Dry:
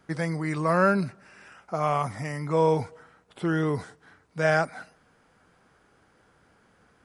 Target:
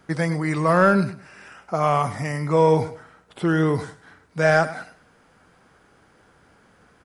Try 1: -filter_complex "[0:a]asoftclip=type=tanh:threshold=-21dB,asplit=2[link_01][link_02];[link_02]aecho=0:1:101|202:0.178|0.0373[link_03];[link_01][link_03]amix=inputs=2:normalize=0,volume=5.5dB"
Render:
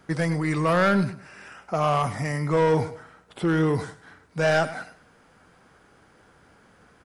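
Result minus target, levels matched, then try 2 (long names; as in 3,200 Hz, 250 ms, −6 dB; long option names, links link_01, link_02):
soft clipping: distortion +15 dB
-filter_complex "[0:a]asoftclip=type=tanh:threshold=-9dB,asplit=2[link_01][link_02];[link_02]aecho=0:1:101|202:0.178|0.0373[link_03];[link_01][link_03]amix=inputs=2:normalize=0,volume=5.5dB"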